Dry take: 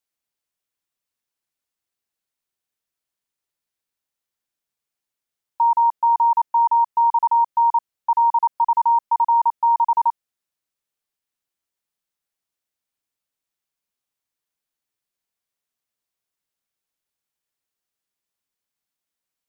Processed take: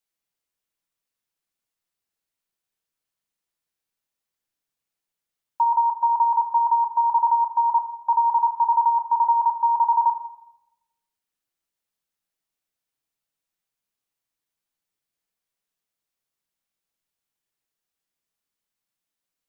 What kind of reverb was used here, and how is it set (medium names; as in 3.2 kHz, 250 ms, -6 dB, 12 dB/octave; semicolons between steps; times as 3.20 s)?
simulated room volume 370 m³, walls mixed, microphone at 0.66 m; trim -1.5 dB